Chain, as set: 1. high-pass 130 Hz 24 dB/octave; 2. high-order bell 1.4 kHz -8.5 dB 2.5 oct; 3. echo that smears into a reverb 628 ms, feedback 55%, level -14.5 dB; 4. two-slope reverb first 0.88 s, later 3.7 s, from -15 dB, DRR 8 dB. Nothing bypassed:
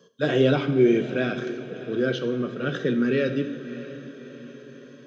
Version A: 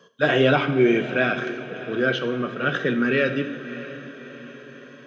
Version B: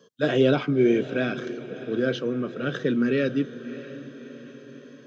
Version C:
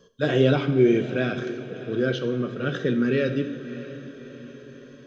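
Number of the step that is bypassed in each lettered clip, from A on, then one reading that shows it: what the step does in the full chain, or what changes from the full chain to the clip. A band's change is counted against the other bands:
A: 2, 2 kHz band +7.5 dB; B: 4, echo-to-direct -6.5 dB to -13.0 dB; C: 1, 125 Hz band +2.5 dB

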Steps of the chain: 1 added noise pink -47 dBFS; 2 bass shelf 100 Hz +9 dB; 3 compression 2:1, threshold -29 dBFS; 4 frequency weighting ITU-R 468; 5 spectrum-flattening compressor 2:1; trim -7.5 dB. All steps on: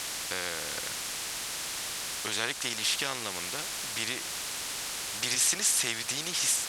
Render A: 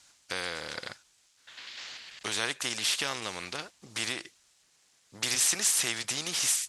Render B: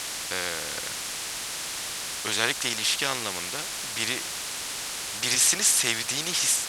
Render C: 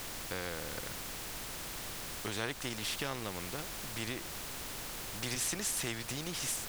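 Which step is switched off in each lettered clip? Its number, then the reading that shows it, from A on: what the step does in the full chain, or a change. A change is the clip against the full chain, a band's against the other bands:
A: 1, momentary loudness spread change +8 LU; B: 3, loudness change +4.0 LU; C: 4, 125 Hz band +10.5 dB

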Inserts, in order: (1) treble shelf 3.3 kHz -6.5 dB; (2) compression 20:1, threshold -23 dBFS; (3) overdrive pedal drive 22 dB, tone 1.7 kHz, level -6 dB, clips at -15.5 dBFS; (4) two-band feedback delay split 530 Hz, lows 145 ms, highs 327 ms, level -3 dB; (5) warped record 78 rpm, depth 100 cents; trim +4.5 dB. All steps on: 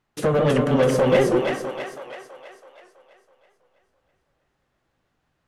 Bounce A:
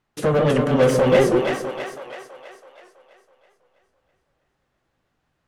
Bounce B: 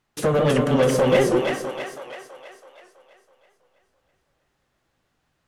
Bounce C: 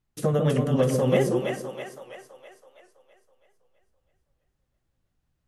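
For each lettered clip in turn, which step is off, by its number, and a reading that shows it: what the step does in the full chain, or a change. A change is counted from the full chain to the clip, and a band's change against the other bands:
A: 2, mean gain reduction 2.5 dB; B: 1, 8 kHz band +3.5 dB; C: 3, momentary loudness spread change -3 LU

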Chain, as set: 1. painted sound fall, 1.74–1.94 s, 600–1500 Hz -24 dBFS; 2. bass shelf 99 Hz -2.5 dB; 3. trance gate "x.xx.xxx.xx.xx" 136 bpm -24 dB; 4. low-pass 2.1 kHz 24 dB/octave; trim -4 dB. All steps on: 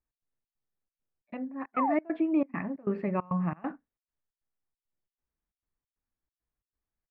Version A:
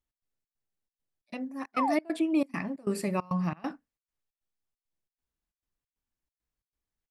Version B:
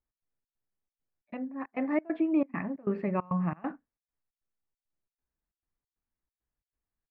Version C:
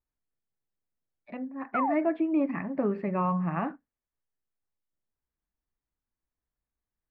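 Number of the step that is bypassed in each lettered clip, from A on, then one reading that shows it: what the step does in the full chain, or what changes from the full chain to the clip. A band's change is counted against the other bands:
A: 4, 2 kHz band +2.5 dB; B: 1, 1 kHz band -5.0 dB; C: 3, crest factor change -1.5 dB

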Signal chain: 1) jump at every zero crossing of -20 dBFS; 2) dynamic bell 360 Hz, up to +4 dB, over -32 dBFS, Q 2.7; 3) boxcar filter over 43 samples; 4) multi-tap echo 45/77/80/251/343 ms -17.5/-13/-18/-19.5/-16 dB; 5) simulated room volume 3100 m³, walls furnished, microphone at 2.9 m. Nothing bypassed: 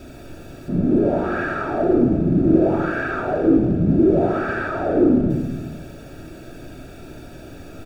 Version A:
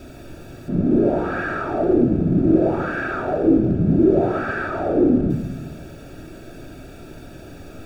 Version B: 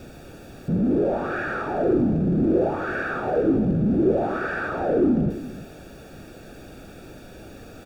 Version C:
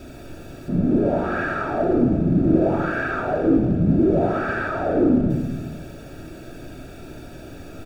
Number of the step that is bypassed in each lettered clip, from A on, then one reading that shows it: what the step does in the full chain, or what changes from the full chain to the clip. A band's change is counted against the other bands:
4, momentary loudness spread change -5 LU; 5, echo-to-direct 0.0 dB to -9.0 dB; 2, loudness change -1.5 LU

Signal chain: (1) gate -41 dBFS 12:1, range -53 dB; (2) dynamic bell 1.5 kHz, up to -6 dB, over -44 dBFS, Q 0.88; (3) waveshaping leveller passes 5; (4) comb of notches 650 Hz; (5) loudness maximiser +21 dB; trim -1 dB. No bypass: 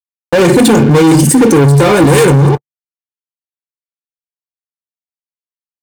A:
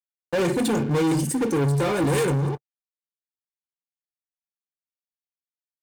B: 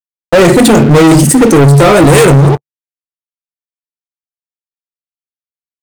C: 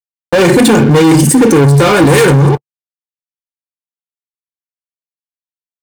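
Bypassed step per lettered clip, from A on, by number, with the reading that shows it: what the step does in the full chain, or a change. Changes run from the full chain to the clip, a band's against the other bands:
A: 5, crest factor change +1.5 dB; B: 4, crest factor change -2.0 dB; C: 2, 2 kHz band +2.5 dB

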